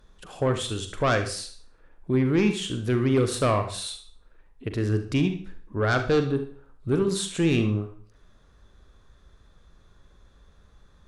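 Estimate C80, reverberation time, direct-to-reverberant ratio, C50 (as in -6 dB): 15.0 dB, 0.50 s, 6.5 dB, 8.5 dB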